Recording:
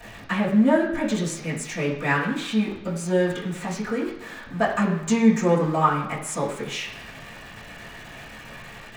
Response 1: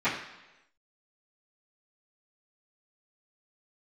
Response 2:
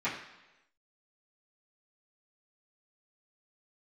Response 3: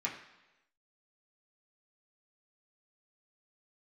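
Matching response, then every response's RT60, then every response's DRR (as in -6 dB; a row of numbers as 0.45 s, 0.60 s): 2; 1.0 s, 1.0 s, 1.0 s; -19.0 dB, -13.5 dB, -4.5 dB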